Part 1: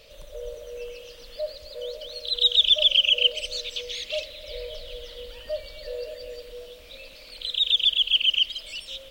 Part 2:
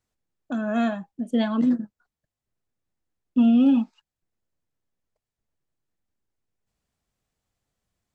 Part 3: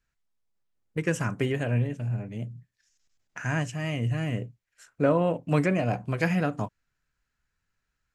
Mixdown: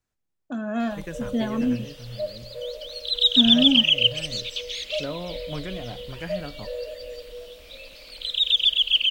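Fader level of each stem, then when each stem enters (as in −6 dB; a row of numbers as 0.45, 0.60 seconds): +1.0, −3.0, −10.0 decibels; 0.80, 0.00, 0.00 seconds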